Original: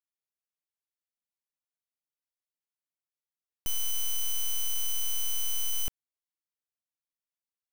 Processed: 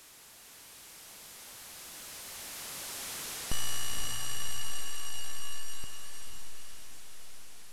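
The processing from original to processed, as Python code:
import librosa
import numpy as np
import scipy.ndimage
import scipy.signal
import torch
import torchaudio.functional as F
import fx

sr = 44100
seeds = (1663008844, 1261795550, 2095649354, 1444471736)

p1 = fx.delta_mod(x, sr, bps=64000, step_db=-39.0)
p2 = fx.doppler_pass(p1, sr, speed_mps=19, closest_m=13.0, pass_at_s=3.17)
p3 = p2 + fx.echo_diffused(p2, sr, ms=515, feedback_pct=45, wet_db=-5.0, dry=0)
y = p3 * 10.0 ** (6.0 / 20.0)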